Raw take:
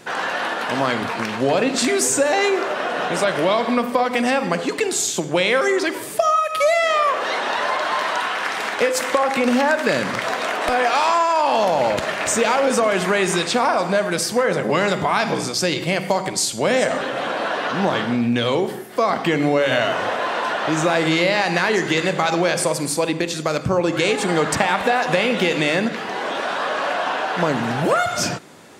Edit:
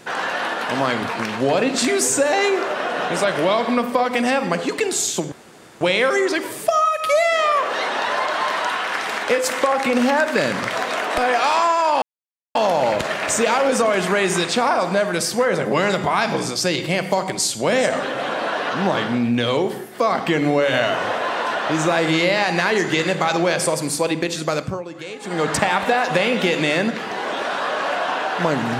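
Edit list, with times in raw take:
5.32 s: insert room tone 0.49 s
11.53 s: insert silence 0.53 s
23.53–24.47 s: dip -14 dB, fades 0.28 s

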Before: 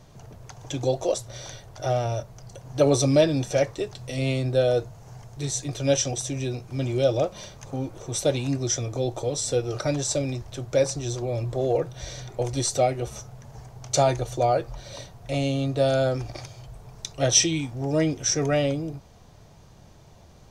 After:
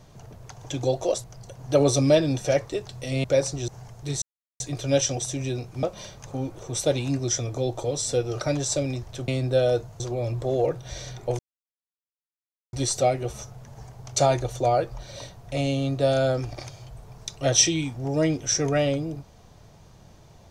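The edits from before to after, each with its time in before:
1.24–2.30 s: delete
4.30–5.02 s: swap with 10.67–11.11 s
5.56 s: insert silence 0.38 s
6.79–7.22 s: delete
12.50 s: insert silence 1.34 s

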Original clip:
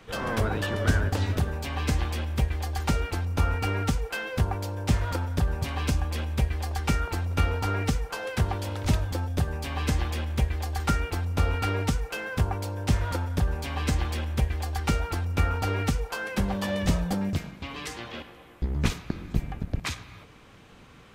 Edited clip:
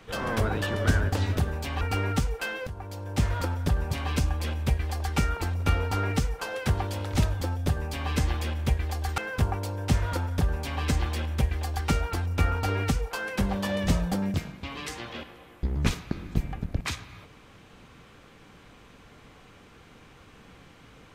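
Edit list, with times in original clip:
1.81–3.52 s: delete
4.38–5.01 s: fade in, from -16.5 dB
10.89–12.17 s: delete

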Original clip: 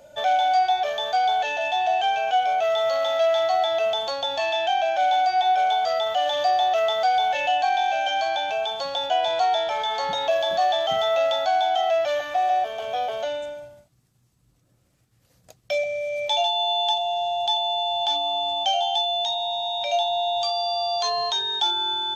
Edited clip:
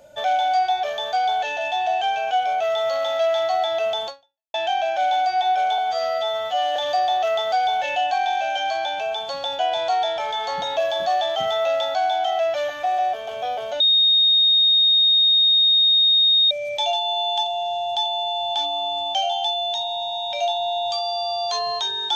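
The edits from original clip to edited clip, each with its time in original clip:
4.07–4.54 s: fade out exponential
5.78–6.27 s: stretch 2×
13.31–16.02 s: bleep 3.71 kHz -13 dBFS

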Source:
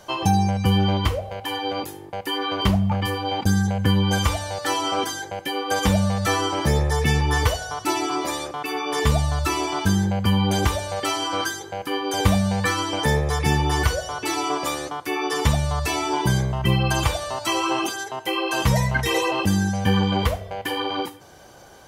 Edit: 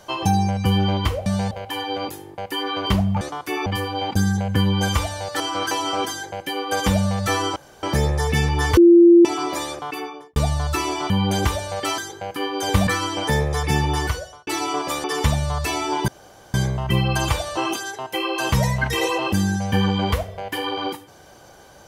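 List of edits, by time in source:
6.55 s: insert room tone 0.27 s
7.49–7.97 s: bleep 343 Hz -6.5 dBFS
8.58–9.08 s: studio fade out
9.82–10.30 s: delete
11.18–11.49 s: move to 4.70 s
12.38–12.63 s: move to 1.26 s
13.68–14.23 s: fade out
14.80–15.25 s: move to 2.96 s
16.29 s: insert room tone 0.46 s
17.32–17.70 s: delete

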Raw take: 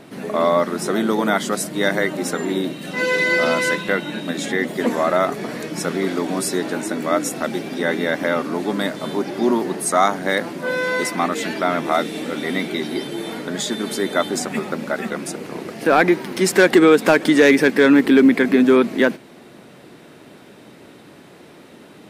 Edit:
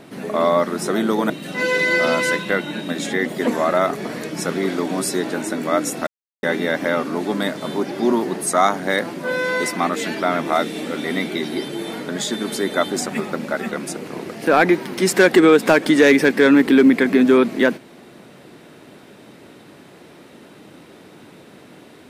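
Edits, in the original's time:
1.30–2.69 s: delete
7.46–7.82 s: mute

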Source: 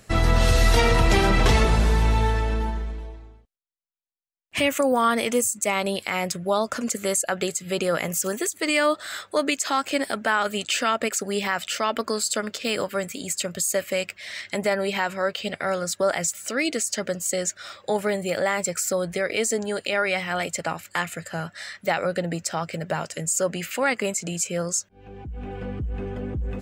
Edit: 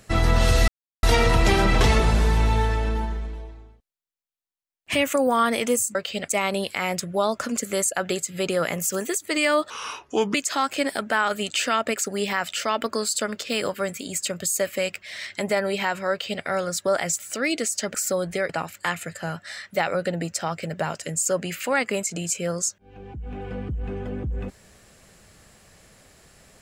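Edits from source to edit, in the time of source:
0.68 s: insert silence 0.35 s
9.02–9.49 s: speed 73%
15.25–15.58 s: copy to 5.60 s
17.09–18.75 s: delete
19.30–20.60 s: delete

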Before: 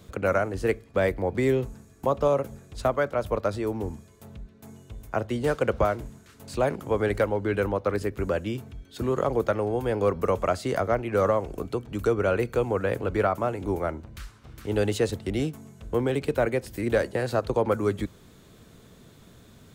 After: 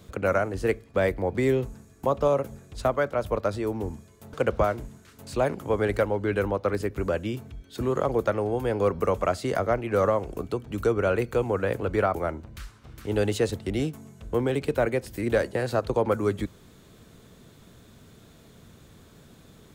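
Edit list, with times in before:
4.33–5.54 s: delete
13.36–13.75 s: delete

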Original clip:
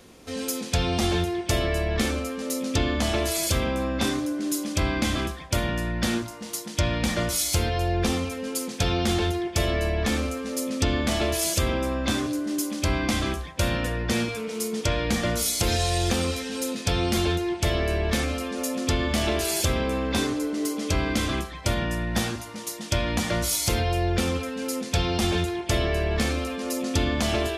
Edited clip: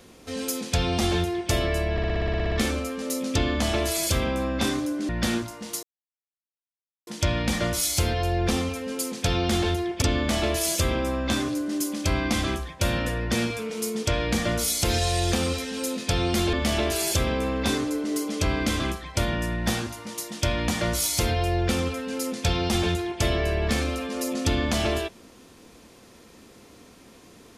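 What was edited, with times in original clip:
1.92 s: stutter 0.06 s, 11 plays
4.49–5.89 s: delete
6.63 s: insert silence 1.24 s
9.58–10.80 s: delete
17.31–19.02 s: delete

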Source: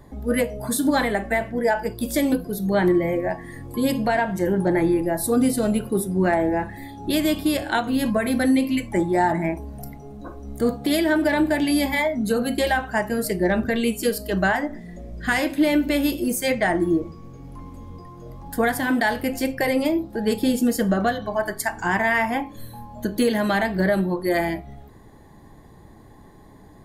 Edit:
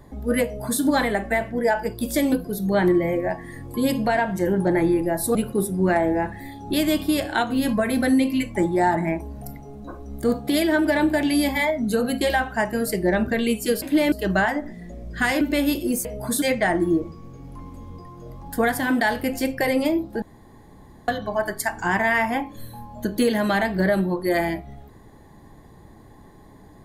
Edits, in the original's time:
0.45–0.82 s: copy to 16.42 s
5.35–5.72 s: delete
15.48–15.78 s: move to 14.19 s
20.22–21.08 s: room tone

